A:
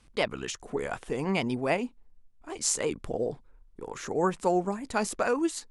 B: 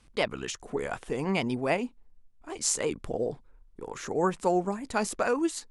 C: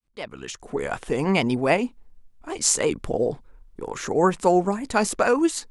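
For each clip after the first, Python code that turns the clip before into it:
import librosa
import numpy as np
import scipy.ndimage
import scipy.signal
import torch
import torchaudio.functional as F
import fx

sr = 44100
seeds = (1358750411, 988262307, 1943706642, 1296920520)

y1 = x
y2 = fx.fade_in_head(y1, sr, length_s=1.07)
y2 = y2 * librosa.db_to_amplitude(7.0)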